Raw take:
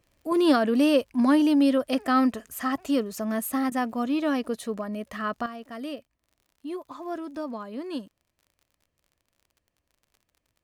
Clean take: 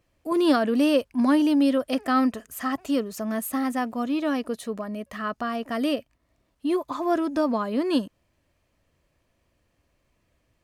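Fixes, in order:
click removal
repair the gap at 0:03.70, 14 ms
level correction +10 dB, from 0:05.46

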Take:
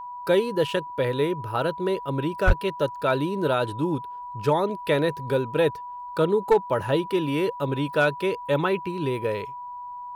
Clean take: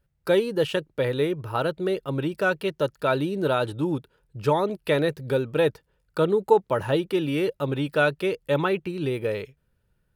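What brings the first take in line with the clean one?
clipped peaks rebuilt −11 dBFS
notch filter 980 Hz, Q 30
0:02.46–0:02.58: high-pass filter 140 Hz 24 dB per octave

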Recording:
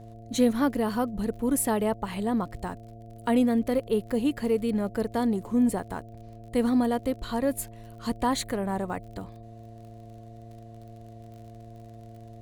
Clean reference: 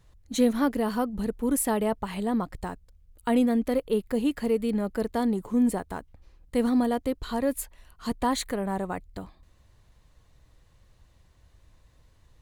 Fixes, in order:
click removal
hum removal 112.4 Hz, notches 6
notch filter 700 Hz, Q 30

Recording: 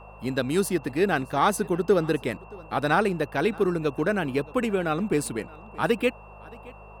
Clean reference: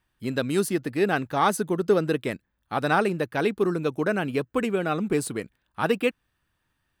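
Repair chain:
hum removal 51.9 Hz, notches 4
notch filter 2,700 Hz, Q 30
noise reduction from a noise print 30 dB
echo removal 623 ms −23 dB

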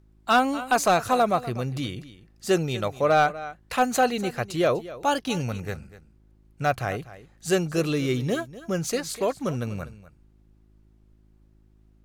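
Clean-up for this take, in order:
clipped peaks rebuilt −12 dBFS
hum removal 52.9 Hz, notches 7
downward expander −50 dBFS, range −21 dB
echo removal 246 ms −16.5 dB

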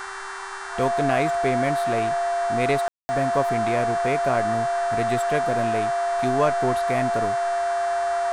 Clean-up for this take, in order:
hum removal 389.3 Hz, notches 25
notch filter 690 Hz, Q 30
ambience match 0:02.88–0:03.09
noise reduction from a noise print 30 dB

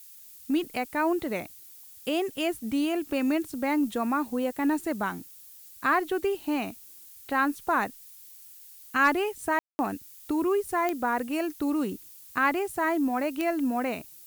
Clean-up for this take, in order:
clipped peaks rebuilt −12 dBFS
click removal
ambience match 0:09.59–0:09.79
noise reduction from a noise print 24 dB

